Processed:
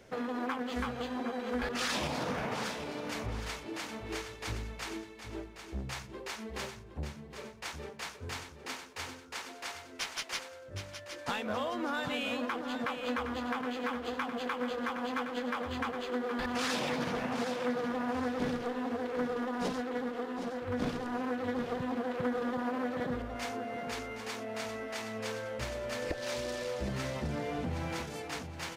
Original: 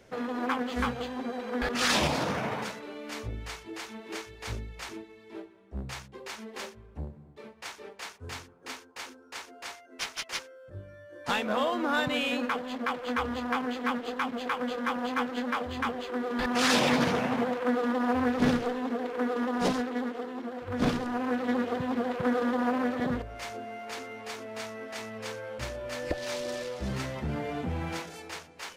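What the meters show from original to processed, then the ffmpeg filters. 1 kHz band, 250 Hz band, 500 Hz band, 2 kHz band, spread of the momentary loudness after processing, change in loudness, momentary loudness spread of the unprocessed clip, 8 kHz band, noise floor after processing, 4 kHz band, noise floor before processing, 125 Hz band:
-5.0 dB, -5.5 dB, -3.5 dB, -4.5 dB, 9 LU, -5.0 dB, 16 LU, -4.0 dB, -50 dBFS, -5.0 dB, -54 dBFS, -3.5 dB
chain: -filter_complex "[0:a]acompressor=threshold=-33dB:ratio=3,asplit=2[a][b];[b]aecho=0:1:767|1534|2301|3068:0.355|0.124|0.0435|0.0152[c];[a][c]amix=inputs=2:normalize=0"

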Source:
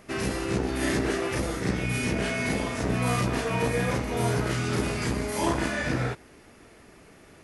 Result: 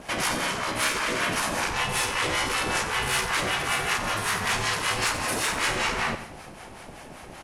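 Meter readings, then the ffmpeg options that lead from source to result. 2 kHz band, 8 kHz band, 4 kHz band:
+6.0 dB, +7.5 dB, +9.0 dB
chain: -filter_complex "[0:a]aeval=exprs='val(0)*sin(2*PI*440*n/s)':c=same,asplit=2[a][b];[b]aeval=exprs='0.2*sin(PI/2*2.51*val(0)/0.2)':c=same,volume=-8dB[c];[a][c]amix=inputs=2:normalize=0,afftfilt=real='re*lt(hypot(re,im),0.158)':imag='im*lt(hypot(re,im),0.158)':win_size=1024:overlap=0.75,acrossover=split=660[d][e];[d]aeval=exprs='val(0)*(1-0.7/2+0.7/2*cos(2*PI*5.2*n/s))':c=same[f];[e]aeval=exprs='val(0)*(1-0.7/2-0.7/2*cos(2*PI*5.2*n/s))':c=same[g];[f][g]amix=inputs=2:normalize=0,asoftclip=type=tanh:threshold=-19.5dB,asplit=2[h][i];[i]aecho=0:1:90|180|270|360:0.282|0.107|0.0407|0.0155[j];[h][j]amix=inputs=2:normalize=0,volume=7dB"

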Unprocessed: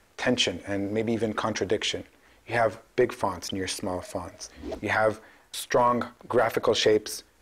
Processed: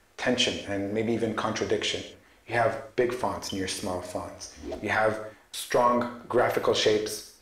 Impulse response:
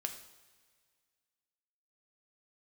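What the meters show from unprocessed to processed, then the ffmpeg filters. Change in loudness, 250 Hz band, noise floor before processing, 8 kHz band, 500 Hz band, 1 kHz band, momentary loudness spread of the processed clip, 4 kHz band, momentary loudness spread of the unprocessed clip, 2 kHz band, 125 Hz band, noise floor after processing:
-0.5 dB, -0.5 dB, -61 dBFS, -0.5 dB, -1.0 dB, -0.5 dB, 13 LU, 0.0 dB, 13 LU, 0.0 dB, -1.0 dB, -59 dBFS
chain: -filter_complex "[1:a]atrim=start_sample=2205,afade=t=out:st=0.28:d=0.01,atrim=end_sample=12789[a];[0:a][a]afir=irnorm=-1:irlink=0"

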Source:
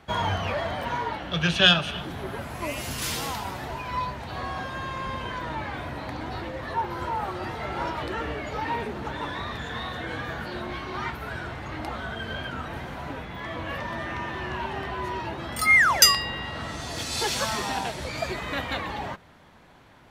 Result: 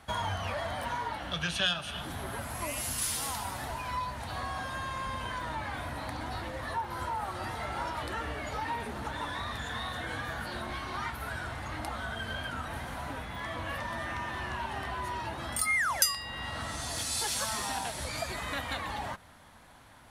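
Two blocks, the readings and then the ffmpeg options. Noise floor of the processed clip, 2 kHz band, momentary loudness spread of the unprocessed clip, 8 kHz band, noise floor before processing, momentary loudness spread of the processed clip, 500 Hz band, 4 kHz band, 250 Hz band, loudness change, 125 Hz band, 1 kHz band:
-54 dBFS, -8.0 dB, 16 LU, -3.5 dB, -53 dBFS, 9 LU, -7.5 dB, -9.0 dB, -8.0 dB, -7.0 dB, -6.0 dB, -5.0 dB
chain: -af "equalizer=f=160:t=o:w=0.67:g=-6,equalizer=f=400:t=o:w=0.67:g=-11,equalizer=f=2.5k:t=o:w=0.67:g=-3,equalizer=f=10k:t=o:w=0.67:g=12,acompressor=threshold=-34dB:ratio=2,equalizer=f=420:t=o:w=0.28:g=3.5"

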